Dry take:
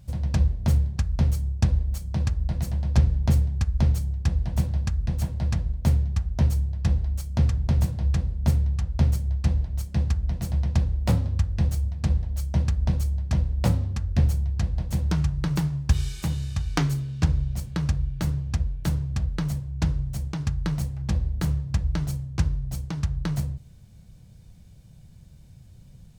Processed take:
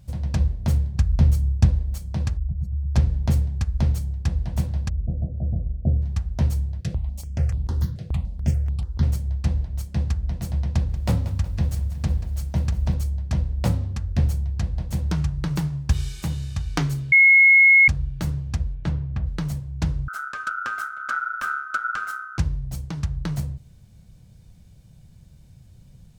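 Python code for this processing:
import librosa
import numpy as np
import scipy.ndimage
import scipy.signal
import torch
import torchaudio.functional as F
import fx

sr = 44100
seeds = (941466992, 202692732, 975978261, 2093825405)

y = fx.low_shelf(x, sr, hz=200.0, db=6.0, at=(0.94, 1.71))
y = fx.spec_expand(y, sr, power=1.9, at=(2.37, 2.95))
y = fx.steep_lowpass(y, sr, hz=710.0, slope=72, at=(4.88, 6.01), fade=0.02)
y = fx.phaser_held(y, sr, hz=6.9, low_hz=250.0, high_hz=6300.0, at=(6.8, 9.03))
y = fx.echo_crushed(y, sr, ms=184, feedback_pct=55, bits=8, wet_db=-14, at=(10.71, 12.94))
y = fx.lowpass(y, sr, hz=fx.line((18.74, 4000.0), (19.25, 2200.0)), slope=12, at=(18.74, 19.25), fade=0.02)
y = fx.ring_mod(y, sr, carrier_hz=1400.0, at=(20.08, 22.38))
y = fx.edit(y, sr, fx.bleep(start_s=17.12, length_s=0.76, hz=2170.0, db=-9.5), tone=tone)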